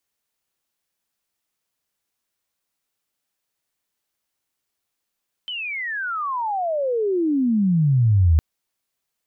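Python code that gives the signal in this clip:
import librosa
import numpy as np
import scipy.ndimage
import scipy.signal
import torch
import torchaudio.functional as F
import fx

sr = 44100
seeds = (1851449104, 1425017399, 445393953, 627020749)

y = fx.chirp(sr, length_s=2.91, from_hz=3100.0, to_hz=75.0, law='logarithmic', from_db=-26.5, to_db=-11.5)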